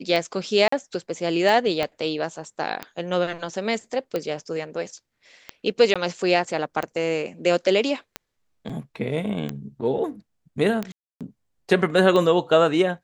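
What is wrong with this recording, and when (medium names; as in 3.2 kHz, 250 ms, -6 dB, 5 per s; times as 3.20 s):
tick 45 rpm -13 dBFS
0.68–0.72 s: dropout 44 ms
1.83 s: pop -11 dBFS
5.94–5.96 s: dropout 16 ms
8.69–8.70 s: dropout 5.7 ms
10.92–11.21 s: dropout 287 ms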